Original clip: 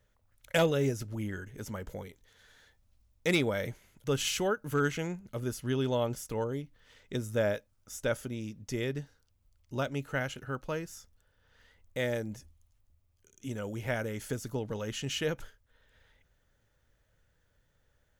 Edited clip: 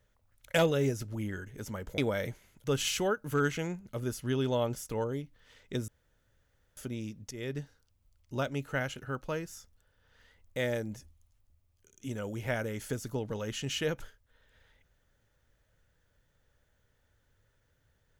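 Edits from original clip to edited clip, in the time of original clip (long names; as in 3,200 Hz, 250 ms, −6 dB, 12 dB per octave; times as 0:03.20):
0:01.98–0:03.38: remove
0:07.28–0:08.17: fill with room tone
0:08.71–0:08.99: fade in, from −14 dB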